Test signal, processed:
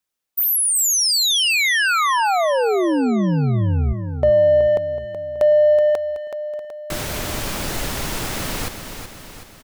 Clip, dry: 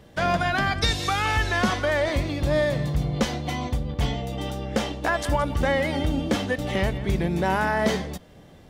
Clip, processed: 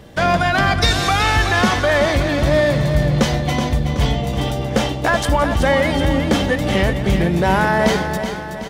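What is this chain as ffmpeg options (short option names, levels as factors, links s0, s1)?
-filter_complex "[0:a]asplit=2[s0][s1];[s1]asoftclip=type=tanh:threshold=0.0473,volume=0.531[s2];[s0][s2]amix=inputs=2:normalize=0,aecho=1:1:375|750|1125|1500|1875|2250:0.376|0.199|0.106|0.056|0.0297|0.0157,volume=1.78"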